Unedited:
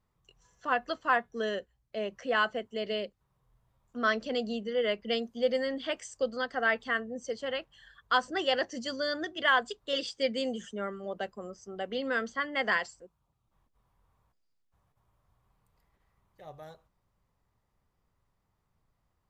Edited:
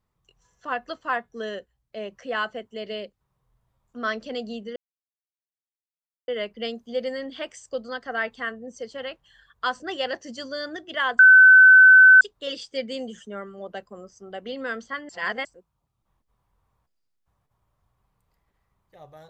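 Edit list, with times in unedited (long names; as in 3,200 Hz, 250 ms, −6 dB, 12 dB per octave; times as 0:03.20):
0:04.76: splice in silence 1.52 s
0:09.67: insert tone 1,520 Hz −7.5 dBFS 1.02 s
0:12.55–0:12.91: reverse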